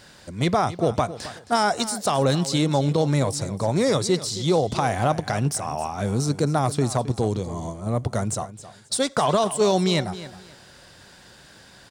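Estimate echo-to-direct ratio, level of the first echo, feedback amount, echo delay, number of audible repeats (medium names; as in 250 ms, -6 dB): -14.5 dB, -15.0 dB, 24%, 267 ms, 2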